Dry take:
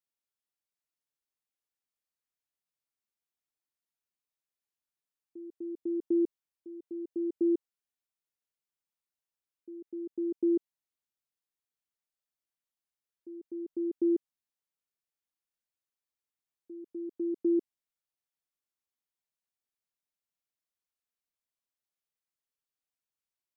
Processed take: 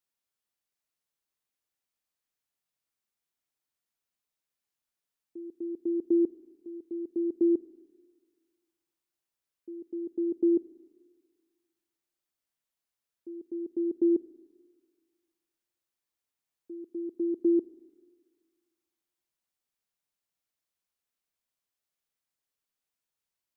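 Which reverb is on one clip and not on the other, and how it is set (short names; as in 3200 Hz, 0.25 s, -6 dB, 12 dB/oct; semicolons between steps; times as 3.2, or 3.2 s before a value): Schroeder reverb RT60 1.7 s, combs from 33 ms, DRR 17 dB; gain +3.5 dB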